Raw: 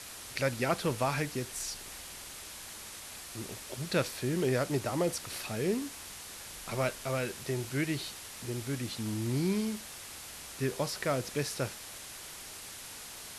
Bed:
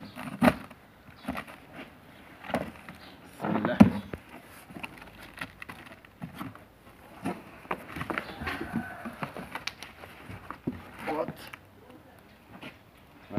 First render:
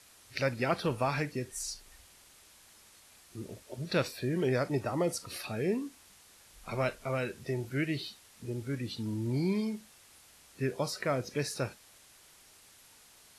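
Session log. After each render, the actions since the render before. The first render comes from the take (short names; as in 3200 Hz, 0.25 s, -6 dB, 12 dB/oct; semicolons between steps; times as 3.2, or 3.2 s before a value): noise print and reduce 13 dB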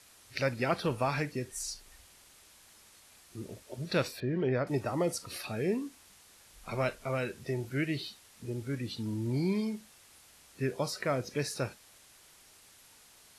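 4.2–4.67 air absorption 290 m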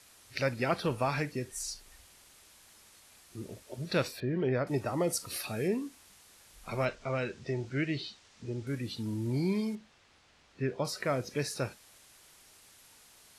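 5.1–5.68 high shelf 7500 Hz +9 dB; 6.85–8.67 LPF 6900 Hz 24 dB/oct; 9.75–10.85 air absorption 140 m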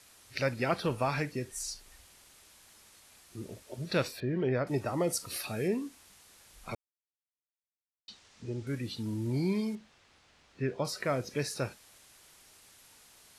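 6.75–8.08 mute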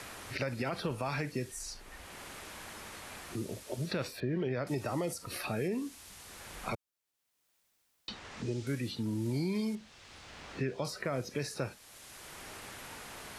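limiter -25 dBFS, peak gain reduction 9 dB; three-band squash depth 70%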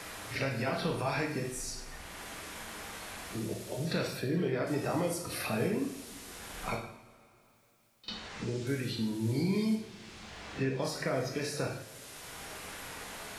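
pre-echo 45 ms -17 dB; two-slope reverb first 0.66 s, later 3.3 s, from -20 dB, DRR 0 dB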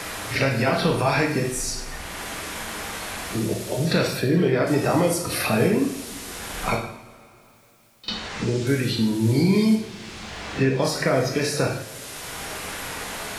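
gain +11.5 dB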